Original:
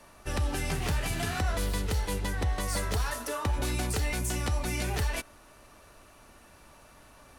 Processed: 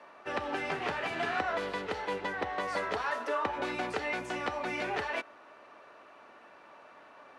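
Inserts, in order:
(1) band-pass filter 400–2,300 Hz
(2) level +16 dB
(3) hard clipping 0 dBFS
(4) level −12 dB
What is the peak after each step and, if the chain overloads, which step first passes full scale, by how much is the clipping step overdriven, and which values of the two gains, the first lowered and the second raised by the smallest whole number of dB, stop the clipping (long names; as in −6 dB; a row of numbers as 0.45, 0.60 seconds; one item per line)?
−21.5, −5.5, −5.5, −17.5 dBFS
no step passes full scale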